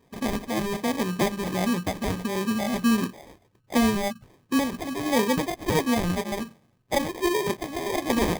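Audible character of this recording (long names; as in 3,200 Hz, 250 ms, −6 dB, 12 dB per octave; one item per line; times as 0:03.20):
phaser sweep stages 4, 1.4 Hz, lowest notch 400–1,200 Hz
aliases and images of a low sample rate 1,400 Hz, jitter 0%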